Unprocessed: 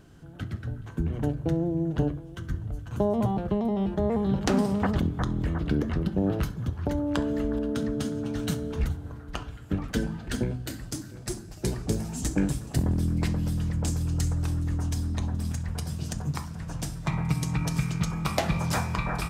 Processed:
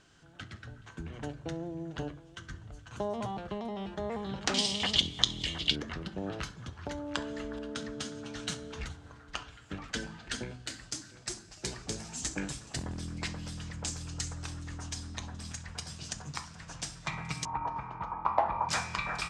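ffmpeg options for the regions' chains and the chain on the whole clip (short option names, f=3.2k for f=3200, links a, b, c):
-filter_complex "[0:a]asettb=1/sr,asplit=3[a][b][c];[a]atrim=end=4.544[d];[b]atrim=start=4.54:end=5.76,asetpts=PTS-STARTPTS,afade=t=in:d=0.004:c=qsin,afade=t=out:st=1.216:d=0.004:c=qsin,highshelf=f=2.1k:t=q:w=3:g=13,bandreject=f=2.6k:w=11,acrossover=split=9400[e][f];[f]acompressor=threshold=-50dB:ratio=4:attack=1:release=60[g];[e][g]amix=inputs=2:normalize=0[h];[c]atrim=start=5.756[i];[d][h]acrossfade=d=0.004:c1=hsin:c2=qsin[j];[j][i]acrossfade=d=0.004:c1=qsin:c2=hsin,asettb=1/sr,asplit=3[k][l][m];[k]atrim=end=17.454[n];[l]atrim=start=17.45:end=18.69,asetpts=PTS-STARTPTS,afade=t=in:d=0.004:c=qsin,afade=t=out:st=1.236:d=0.004:c=qsin,lowpass=f=940:t=q:w=6.2,equalizer=f=160:t=o:w=0.44:g=-12.5[o];[m]atrim=start=18.686[p];[n][o]acrossfade=d=0.004:c1=hsin:c2=qsin[q];[q][p]acrossfade=d=0.004:c1=qsin:c2=hsin,lowpass=f=7.8k:w=0.5412,lowpass=f=7.8k:w=1.3066,tiltshelf=f=740:g=-8.5,volume=-6dB"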